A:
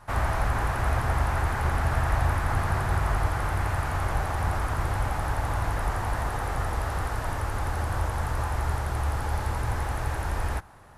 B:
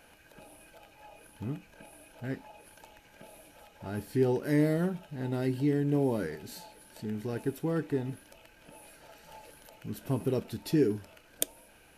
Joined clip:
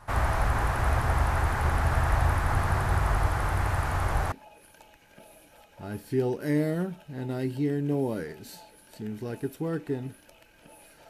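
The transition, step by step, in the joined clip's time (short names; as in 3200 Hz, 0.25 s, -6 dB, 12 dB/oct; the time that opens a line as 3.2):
A
4.32 switch to B from 2.35 s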